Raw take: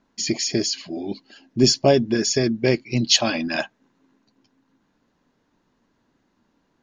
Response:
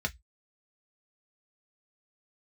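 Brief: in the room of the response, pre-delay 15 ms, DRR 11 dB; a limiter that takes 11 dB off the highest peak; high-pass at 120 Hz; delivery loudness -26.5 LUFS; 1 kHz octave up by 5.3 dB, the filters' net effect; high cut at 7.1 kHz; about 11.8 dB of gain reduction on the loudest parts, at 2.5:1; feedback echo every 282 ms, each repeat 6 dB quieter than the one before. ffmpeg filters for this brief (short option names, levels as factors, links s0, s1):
-filter_complex "[0:a]highpass=120,lowpass=7100,equalizer=f=1000:t=o:g=8.5,acompressor=threshold=0.0447:ratio=2.5,alimiter=limit=0.0841:level=0:latency=1,aecho=1:1:282|564|846|1128|1410|1692:0.501|0.251|0.125|0.0626|0.0313|0.0157,asplit=2[s0][s1];[1:a]atrim=start_sample=2205,adelay=15[s2];[s1][s2]afir=irnorm=-1:irlink=0,volume=0.15[s3];[s0][s3]amix=inputs=2:normalize=0,volume=1.68"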